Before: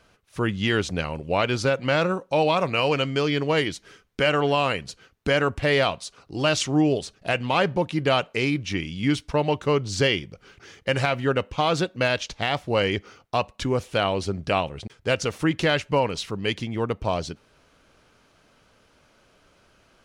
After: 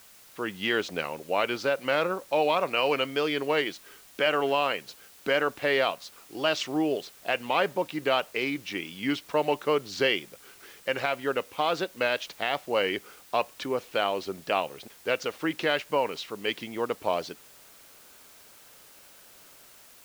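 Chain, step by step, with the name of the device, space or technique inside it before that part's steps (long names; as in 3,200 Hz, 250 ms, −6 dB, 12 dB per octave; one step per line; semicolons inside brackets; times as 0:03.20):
dictaphone (band-pass filter 320–4,500 Hz; automatic gain control gain up to 8 dB; tape wow and flutter; white noise bed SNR 24 dB)
level −8.5 dB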